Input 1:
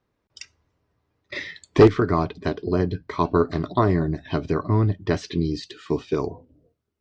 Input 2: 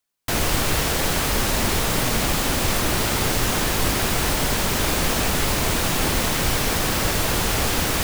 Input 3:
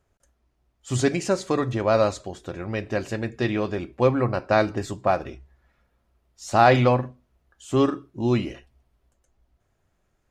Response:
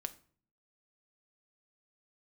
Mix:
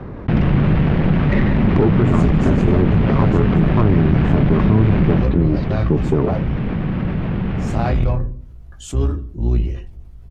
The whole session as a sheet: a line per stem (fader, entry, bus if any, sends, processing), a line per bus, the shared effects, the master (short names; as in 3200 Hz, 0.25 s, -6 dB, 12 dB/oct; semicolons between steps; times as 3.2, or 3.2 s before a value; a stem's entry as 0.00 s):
-3.0 dB, 0.00 s, send -5.5 dB, LPF 1700 Hz 12 dB/oct; three-band squash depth 70%
5.14 s -8.5 dB -> 5.34 s -20 dB, 0.00 s, send -3 dB, inverse Chebyshev low-pass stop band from 10000 Hz, stop band 70 dB; bell 170 Hz +13 dB 1.4 oct
-10.5 dB, 1.20 s, send -13.5 dB, octaver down 2 oct, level +2 dB; chorus voices 6, 0.36 Hz, delay 18 ms, depth 1.4 ms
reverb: on, RT60 0.50 s, pre-delay 5 ms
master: tube stage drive 15 dB, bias 0.6; low shelf 340 Hz +10.5 dB; fast leveller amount 50%